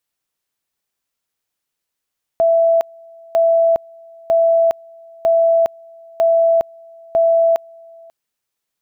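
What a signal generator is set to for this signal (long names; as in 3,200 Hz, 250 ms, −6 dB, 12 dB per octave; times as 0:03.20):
tone at two levels in turn 664 Hz −10 dBFS, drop 28 dB, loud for 0.41 s, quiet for 0.54 s, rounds 6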